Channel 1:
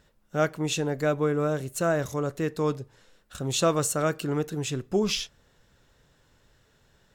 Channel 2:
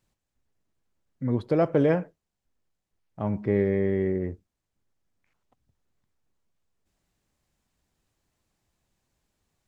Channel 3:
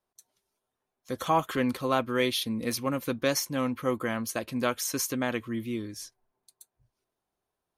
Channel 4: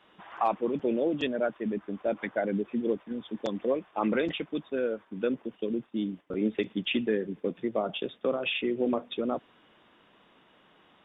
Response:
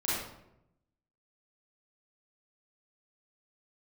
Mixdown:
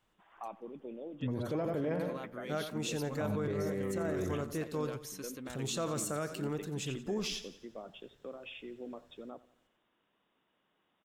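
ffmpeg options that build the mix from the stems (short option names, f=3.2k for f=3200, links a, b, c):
-filter_complex "[0:a]adelay=2150,volume=-8dB,asplit=2[a][b];[b]volume=-14dB[c];[1:a]volume=-5dB,asplit=2[d][e];[e]volume=-8.5dB[f];[2:a]alimiter=limit=-19.5dB:level=0:latency=1:release=125,adelay=250,volume=-14dB[g];[3:a]volume=-17dB,asplit=2[h][i];[i]volume=-19dB[j];[c][f][j]amix=inputs=3:normalize=0,aecho=0:1:88|176|264|352|440|528|616:1|0.47|0.221|0.104|0.0488|0.0229|0.0108[k];[a][d][g][h][k]amix=inputs=5:normalize=0,alimiter=level_in=2.5dB:limit=-24dB:level=0:latency=1:release=24,volume=-2.5dB"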